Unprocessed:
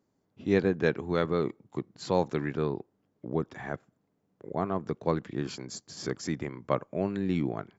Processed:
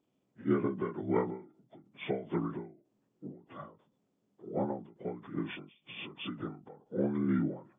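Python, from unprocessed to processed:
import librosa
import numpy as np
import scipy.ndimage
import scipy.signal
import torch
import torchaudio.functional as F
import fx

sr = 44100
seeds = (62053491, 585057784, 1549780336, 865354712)

y = fx.partial_stretch(x, sr, pct=78)
y = fx.end_taper(y, sr, db_per_s=130.0)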